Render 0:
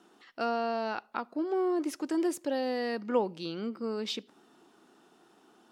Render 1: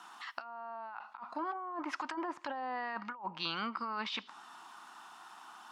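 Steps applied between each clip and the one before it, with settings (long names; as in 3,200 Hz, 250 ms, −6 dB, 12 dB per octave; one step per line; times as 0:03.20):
treble cut that deepens with the level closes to 1,100 Hz, closed at −26.5 dBFS
low shelf with overshoot 660 Hz −14 dB, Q 3
compressor whose output falls as the input rises −44 dBFS, ratio −1
level +3.5 dB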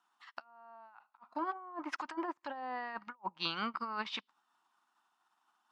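expander for the loud parts 2.5 to 1, over −54 dBFS
level +2.5 dB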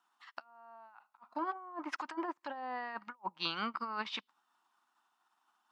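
high-pass filter 140 Hz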